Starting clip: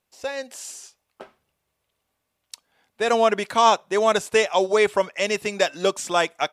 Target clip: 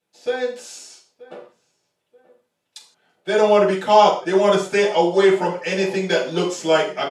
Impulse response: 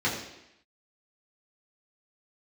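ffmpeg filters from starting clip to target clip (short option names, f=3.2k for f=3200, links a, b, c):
-filter_complex "[0:a]asplit=2[a][b];[b]adelay=855,lowpass=f=1.9k:p=1,volume=-20dB,asplit=2[c][d];[d]adelay=855,lowpass=f=1.9k:p=1,volume=0.3[e];[a][c][e]amix=inputs=3:normalize=0[f];[1:a]atrim=start_sample=2205,afade=t=out:st=0.36:d=0.01,atrim=end_sample=16317,asetrate=83790,aresample=44100[g];[f][g]afir=irnorm=-1:irlink=0,asetrate=40517,aresample=44100,volume=-5dB"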